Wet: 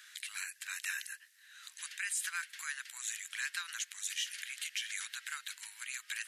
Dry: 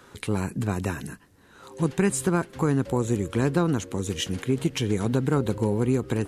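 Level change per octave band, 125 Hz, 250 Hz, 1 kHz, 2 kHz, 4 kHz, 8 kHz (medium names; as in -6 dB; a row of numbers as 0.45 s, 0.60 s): under -40 dB, under -40 dB, -18.0 dB, -1.5 dB, -3.0 dB, -2.5 dB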